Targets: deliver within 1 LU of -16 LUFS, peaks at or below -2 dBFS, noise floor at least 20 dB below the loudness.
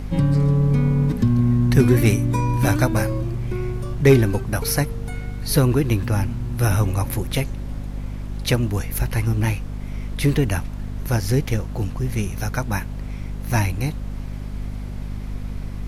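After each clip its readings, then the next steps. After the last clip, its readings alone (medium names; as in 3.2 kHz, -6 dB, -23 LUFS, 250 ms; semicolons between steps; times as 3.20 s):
hum 50 Hz; highest harmonic 250 Hz; hum level -27 dBFS; noise floor -31 dBFS; noise floor target -41 dBFS; loudness -21.0 LUFS; peak level -3.0 dBFS; loudness target -16.0 LUFS
-> de-hum 50 Hz, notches 5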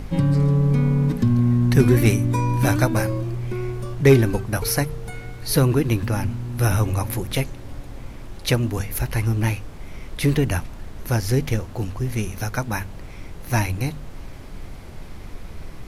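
hum not found; noise floor -37 dBFS; noise floor target -42 dBFS
-> noise print and reduce 6 dB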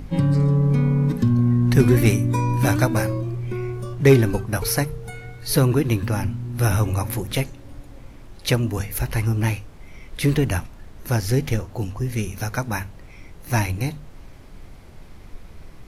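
noise floor -42 dBFS; loudness -21.5 LUFS; peak level -3.5 dBFS; loudness target -16.0 LUFS
-> trim +5.5 dB; peak limiter -2 dBFS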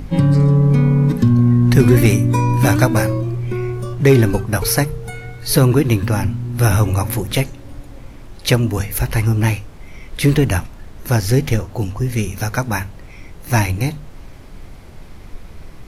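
loudness -16.5 LUFS; peak level -2.0 dBFS; noise floor -37 dBFS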